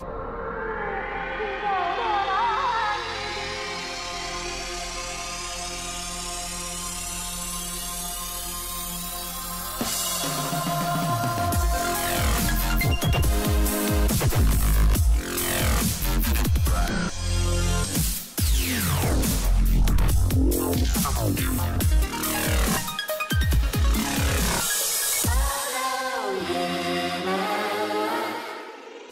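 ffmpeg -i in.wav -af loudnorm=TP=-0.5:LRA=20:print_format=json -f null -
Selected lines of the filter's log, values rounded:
"input_i" : "-25.1",
"input_tp" : "-12.7",
"input_lra" : "6.4",
"input_thresh" : "-35.2",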